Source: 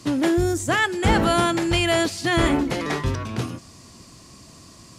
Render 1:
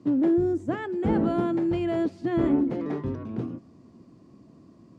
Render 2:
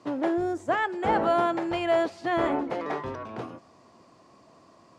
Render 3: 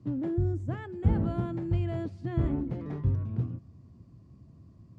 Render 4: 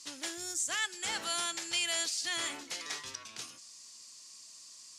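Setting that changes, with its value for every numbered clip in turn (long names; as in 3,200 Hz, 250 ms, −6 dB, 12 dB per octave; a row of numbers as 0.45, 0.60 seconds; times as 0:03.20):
resonant band-pass, frequency: 270, 700, 100, 6,600 Hertz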